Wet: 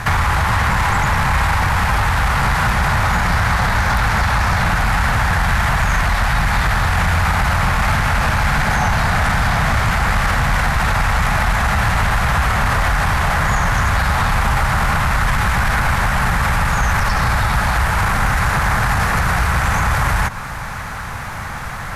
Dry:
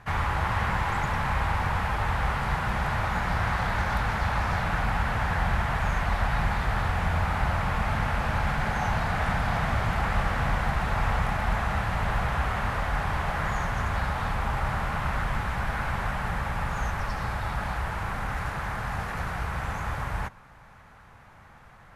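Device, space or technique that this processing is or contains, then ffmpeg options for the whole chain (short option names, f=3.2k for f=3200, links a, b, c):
mastering chain: -filter_complex "[0:a]bass=f=250:g=8,treble=f=4k:g=3,equalizer=f=3k:t=o:w=0.86:g=-3.5,acrossover=split=1100|3700[a][b][c];[a]acompressor=threshold=-23dB:ratio=4[d];[b]acompressor=threshold=-38dB:ratio=4[e];[c]acompressor=threshold=-52dB:ratio=4[f];[d][e][f]amix=inputs=3:normalize=0,acompressor=threshold=-33dB:ratio=1.5,asoftclip=type=tanh:threshold=-21dB,tiltshelf=f=750:g=-6,asoftclip=type=hard:threshold=-26dB,alimiter=level_in=30.5dB:limit=-1dB:release=50:level=0:latency=1,volume=-7.5dB"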